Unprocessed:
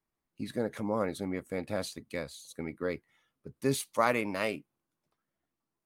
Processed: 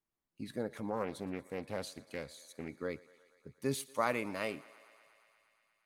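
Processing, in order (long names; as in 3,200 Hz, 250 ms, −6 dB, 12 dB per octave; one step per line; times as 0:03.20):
on a send: feedback echo with a high-pass in the loop 118 ms, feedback 81%, high-pass 330 Hz, level −21 dB
0:00.90–0:02.69: on the sum: highs frequency-modulated by the lows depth 0.25 ms
level −5.5 dB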